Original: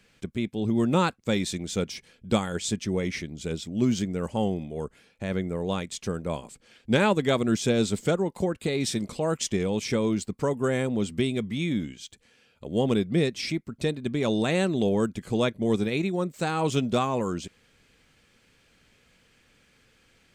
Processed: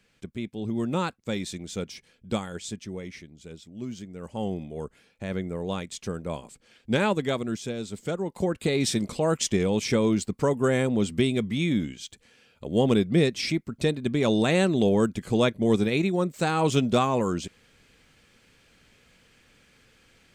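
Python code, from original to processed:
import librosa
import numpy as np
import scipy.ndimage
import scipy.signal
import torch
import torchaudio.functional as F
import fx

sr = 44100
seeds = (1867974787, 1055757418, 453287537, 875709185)

y = fx.gain(x, sr, db=fx.line((2.35, -4.5), (3.38, -12.0), (4.09, -12.0), (4.53, -2.0), (7.19, -2.0), (7.83, -10.5), (8.57, 2.5)))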